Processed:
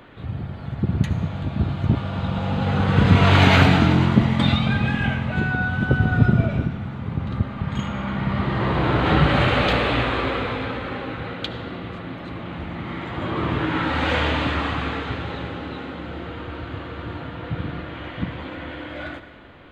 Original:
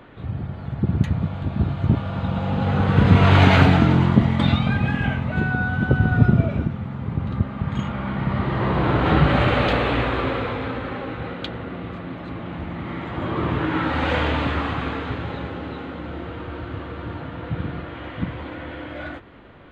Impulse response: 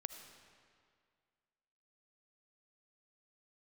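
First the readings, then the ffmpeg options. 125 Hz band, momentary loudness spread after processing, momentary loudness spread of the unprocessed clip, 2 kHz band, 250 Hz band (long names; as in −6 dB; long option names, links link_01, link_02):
−1.0 dB, 16 LU, 16 LU, +1.5 dB, −0.5 dB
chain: -filter_complex "[0:a]asplit=2[link_01][link_02];[1:a]atrim=start_sample=2205,highshelf=frequency=2100:gain=10[link_03];[link_02][link_03]afir=irnorm=-1:irlink=0,volume=4.5dB[link_04];[link_01][link_04]amix=inputs=2:normalize=0,volume=-7.5dB"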